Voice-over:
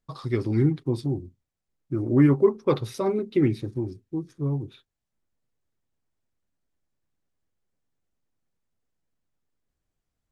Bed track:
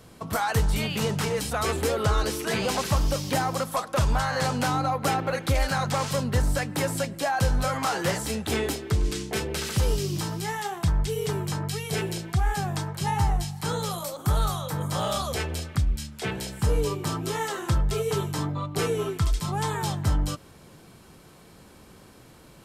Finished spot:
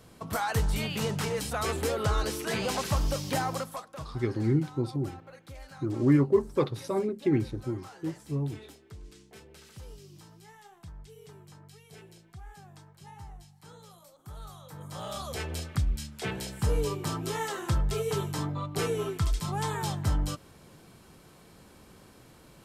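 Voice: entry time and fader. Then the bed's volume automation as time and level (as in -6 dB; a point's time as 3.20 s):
3.90 s, -4.0 dB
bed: 3.54 s -4 dB
4.11 s -22.5 dB
14.23 s -22.5 dB
15.58 s -3.5 dB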